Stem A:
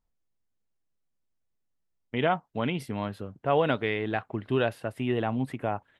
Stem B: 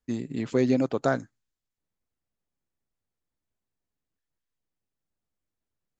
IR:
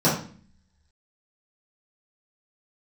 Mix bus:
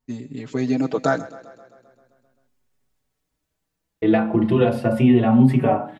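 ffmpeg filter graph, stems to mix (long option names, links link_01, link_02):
-filter_complex "[0:a]bandreject=frequency=1600:width=11,acompressor=threshold=-30dB:ratio=6,volume=1.5dB,asplit=3[link_01][link_02][link_03];[link_01]atrim=end=1.26,asetpts=PTS-STARTPTS,afade=type=out:start_time=1.256:duration=0.004:curve=hsin[link_04];[link_02]atrim=start=1.26:end=4.02,asetpts=PTS-STARTPTS,volume=0[link_05];[link_03]atrim=start=4.02,asetpts=PTS-STARTPTS,afade=type=in:duration=0.004:curve=hsin[link_06];[link_04][link_05][link_06]concat=n=3:v=0:a=1,asplit=2[link_07][link_08];[link_08]volume=-17.5dB[link_09];[1:a]volume=1.5dB,asplit=2[link_10][link_11];[link_11]volume=-18.5dB[link_12];[2:a]atrim=start_sample=2205[link_13];[link_09][link_13]afir=irnorm=-1:irlink=0[link_14];[link_12]aecho=0:1:131|262|393|524|655|786|917|1048|1179|1310:1|0.6|0.36|0.216|0.13|0.0778|0.0467|0.028|0.0168|0.0101[link_15];[link_07][link_10][link_14][link_15]amix=inputs=4:normalize=0,dynaudnorm=framelen=250:gausssize=7:maxgain=14dB,asplit=2[link_16][link_17];[link_17]adelay=5,afreqshift=0.37[link_18];[link_16][link_18]amix=inputs=2:normalize=1"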